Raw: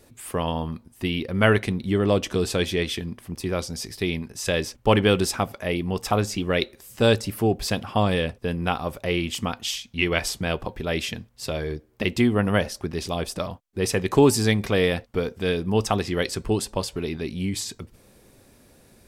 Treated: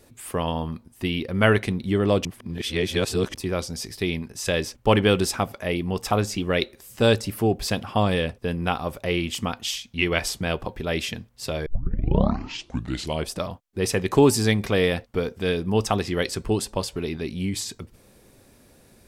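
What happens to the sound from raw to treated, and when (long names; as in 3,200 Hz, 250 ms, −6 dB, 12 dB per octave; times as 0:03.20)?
0:02.25–0:03.34: reverse
0:11.66: tape start 1.64 s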